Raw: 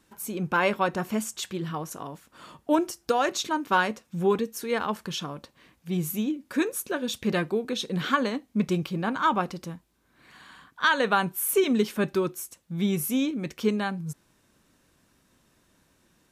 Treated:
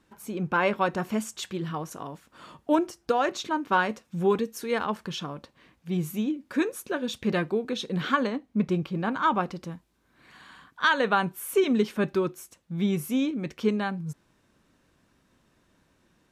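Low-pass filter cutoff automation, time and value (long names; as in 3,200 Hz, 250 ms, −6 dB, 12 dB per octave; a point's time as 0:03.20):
low-pass filter 6 dB per octave
3,100 Hz
from 0:00.78 5,900 Hz
from 0:02.79 2,900 Hz
from 0:03.89 7,700 Hz
from 0:04.84 4,100 Hz
from 0:08.27 1,900 Hz
from 0:08.95 3,700 Hz
from 0:09.72 7,400 Hz
from 0:10.93 3,700 Hz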